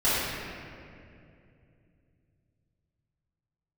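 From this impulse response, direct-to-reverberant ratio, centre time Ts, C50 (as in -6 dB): -15.5 dB, 160 ms, -4.5 dB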